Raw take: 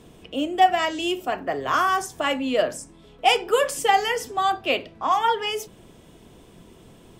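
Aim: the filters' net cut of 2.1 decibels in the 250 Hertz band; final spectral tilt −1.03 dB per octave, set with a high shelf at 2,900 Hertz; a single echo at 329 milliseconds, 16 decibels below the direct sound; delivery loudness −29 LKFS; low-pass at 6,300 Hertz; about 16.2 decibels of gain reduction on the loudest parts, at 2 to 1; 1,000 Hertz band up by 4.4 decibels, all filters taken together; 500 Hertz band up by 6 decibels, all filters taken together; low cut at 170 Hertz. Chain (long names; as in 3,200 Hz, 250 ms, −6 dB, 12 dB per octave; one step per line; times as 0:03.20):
high-pass filter 170 Hz
low-pass filter 6,300 Hz
parametric band 250 Hz −6.5 dB
parametric band 500 Hz +8 dB
parametric band 1,000 Hz +4 dB
high-shelf EQ 2,900 Hz −9 dB
downward compressor 2 to 1, threshold −39 dBFS
single-tap delay 329 ms −16 dB
level +3.5 dB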